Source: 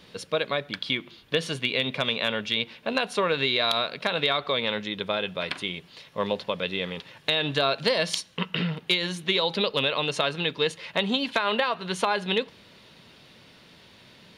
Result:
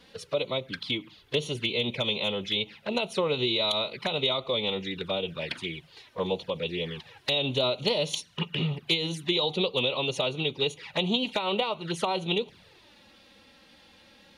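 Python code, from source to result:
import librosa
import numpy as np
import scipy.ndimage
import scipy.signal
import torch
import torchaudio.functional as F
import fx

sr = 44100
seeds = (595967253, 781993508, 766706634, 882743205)

y = fx.pitch_keep_formants(x, sr, semitones=-1.5)
y = fx.env_flanger(y, sr, rest_ms=4.4, full_db=-25.5)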